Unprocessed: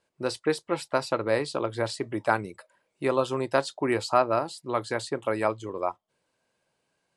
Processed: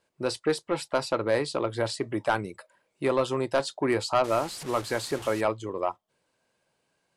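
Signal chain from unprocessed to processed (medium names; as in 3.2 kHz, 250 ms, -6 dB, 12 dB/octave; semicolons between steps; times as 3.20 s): 4.24–5.41 s: one-bit delta coder 64 kbps, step -35 dBFS; saturation -16 dBFS, distortion -14 dB; trim +1.5 dB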